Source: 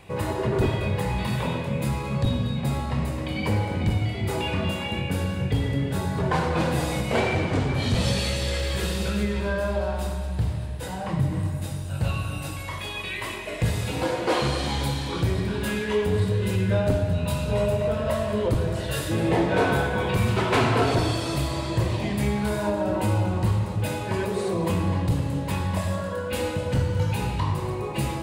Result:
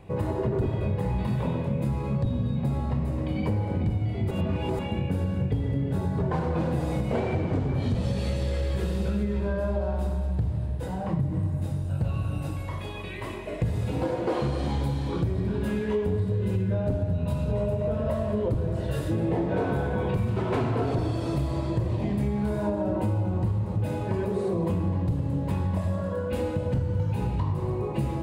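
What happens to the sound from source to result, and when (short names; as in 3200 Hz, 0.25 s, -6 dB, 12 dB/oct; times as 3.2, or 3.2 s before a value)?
4.31–4.79 reverse
whole clip: tilt shelf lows +7.5 dB, about 1100 Hz; compressor, threshold -18 dBFS; gain -4.5 dB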